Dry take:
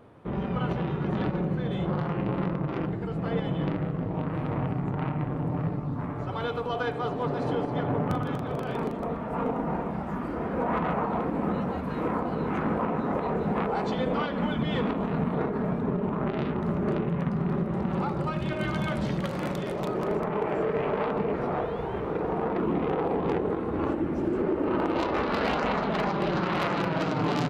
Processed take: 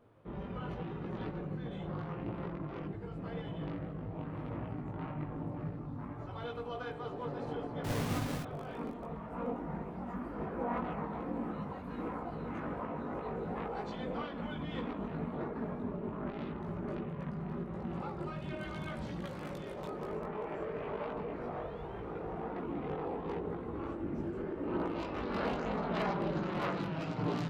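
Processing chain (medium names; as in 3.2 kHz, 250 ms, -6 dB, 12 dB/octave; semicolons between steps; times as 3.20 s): 7.84–8.43 s: square wave that keeps the level; chorus voices 6, 0.8 Hz, delay 19 ms, depth 2.1 ms; trim -8 dB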